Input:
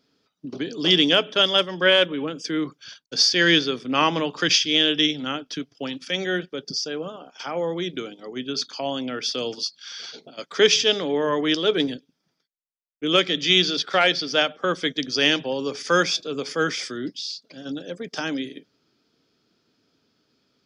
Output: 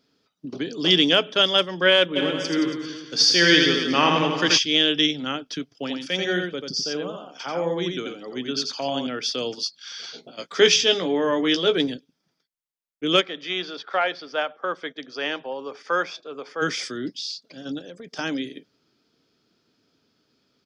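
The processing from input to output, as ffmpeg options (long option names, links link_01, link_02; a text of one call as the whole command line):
ffmpeg -i in.wav -filter_complex "[0:a]asplit=3[link_01][link_02][link_03];[link_01]afade=type=out:start_time=2.15:duration=0.02[link_04];[link_02]aecho=1:1:80|172|277.8|399.5|539.4|700.3:0.631|0.398|0.251|0.158|0.1|0.0631,afade=type=in:start_time=2.15:duration=0.02,afade=type=out:start_time=4.57:duration=0.02[link_05];[link_03]afade=type=in:start_time=4.57:duration=0.02[link_06];[link_04][link_05][link_06]amix=inputs=3:normalize=0,asettb=1/sr,asplit=3[link_07][link_08][link_09];[link_07]atrim=end=5.754[link_10];[link_08]atrim=start=5.75:end=9.07,asetpts=PTS-STARTPTS,afade=type=in:duration=0.004:curve=qsin,afade=type=out:start_time=3.316:duration=0.004:curve=qsin,aecho=1:1:88:0.596,atrim=end_sample=146412[link_11];[link_09]atrim=start=9.066[link_12];[link_10][link_11]acrossfade=duration=0.004:curve1=hsin:curve2=qsin[link_13];[link_13][link_12]acrossfade=duration=0.004:curve1=qsin:curve2=hsin,asettb=1/sr,asplit=3[link_14][link_15][link_16];[link_14]atrim=end=10.094[link_17];[link_15]atrim=start=10.09:end=11.76,asetpts=PTS-STARTPTS,afade=type=in:duration=0.004:curve=qsin,afade=type=out:start_time=1.666:duration=0.004:curve=qsin,asplit=2[link_18][link_19];[link_19]adelay=17,volume=-7dB[link_20];[link_18][link_20]amix=inputs=2:normalize=0,atrim=end_sample=73647[link_21];[link_16]atrim=start=11.756[link_22];[link_17][link_21]acrossfade=duration=0.004:curve1=hsin:curve2=qsin[link_23];[link_23][link_22]acrossfade=duration=0.004:curve1=qsin:curve2=hsin,asplit=3[link_24][link_25][link_26];[link_24]afade=type=out:start_time=13.2:duration=0.02[link_27];[link_25]bandpass=frequency=930:width_type=q:width=1.1,afade=type=in:start_time=13.2:duration=0.02,afade=type=out:start_time=16.61:duration=0.02[link_28];[link_26]afade=type=in:start_time=16.61:duration=0.02[link_29];[link_27][link_28][link_29]amix=inputs=3:normalize=0,asettb=1/sr,asplit=3[link_30][link_31][link_32];[link_30]atrim=end=17.794[link_33];[link_31]atrim=start=17.79:end=18.19,asetpts=PTS-STARTPTS,afade=type=in:duration=0.004:curve=qsin,afade=type=out:start_time=0.396:duration=0.004:curve=qsin,acompressor=threshold=-36dB:ratio=6:attack=3.2:release=140:knee=1:detection=peak[link_34];[link_32]atrim=start=18.186[link_35];[link_33][link_34]acrossfade=duration=0.004:curve1=hsin:curve2=qsin[link_36];[link_36][link_35]acrossfade=duration=0.004:curve1=qsin:curve2=hsin" out.wav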